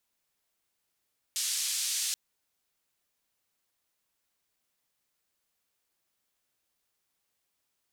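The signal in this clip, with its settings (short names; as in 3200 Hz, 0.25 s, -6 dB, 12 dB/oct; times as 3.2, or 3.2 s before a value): noise band 3800–8600 Hz, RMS -31.5 dBFS 0.78 s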